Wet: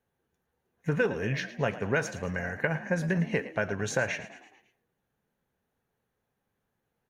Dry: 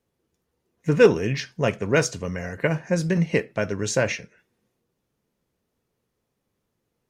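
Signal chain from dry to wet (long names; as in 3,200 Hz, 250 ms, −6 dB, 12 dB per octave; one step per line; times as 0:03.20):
thirty-one-band graphic EQ 315 Hz −5 dB, 800 Hz +7 dB, 1,600 Hz +9 dB, 5,000 Hz −9 dB, 8,000 Hz −8 dB
downward compressor 6 to 1, threshold −19 dBFS, peak gain reduction 10.5 dB
on a send: echo with shifted repeats 110 ms, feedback 53%, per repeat +51 Hz, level −15 dB
on the sum: level −4 dB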